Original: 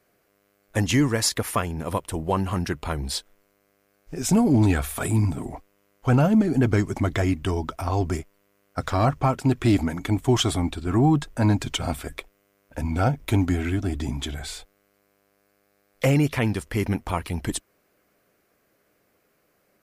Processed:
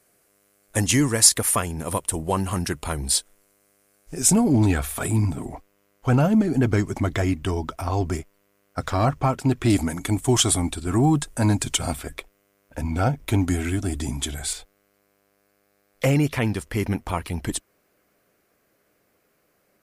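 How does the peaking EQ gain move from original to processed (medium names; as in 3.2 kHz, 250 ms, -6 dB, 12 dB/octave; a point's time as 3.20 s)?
peaking EQ 9.3 kHz 1.1 oct
+14 dB
from 4.33 s +2.5 dB
from 9.70 s +14.5 dB
from 11.93 s +3 dB
from 13.48 s +14 dB
from 14.53 s +2 dB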